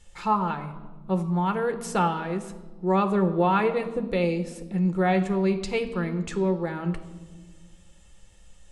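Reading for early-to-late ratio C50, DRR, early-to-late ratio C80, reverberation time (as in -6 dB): 12.0 dB, 6.5 dB, 13.5 dB, 1.3 s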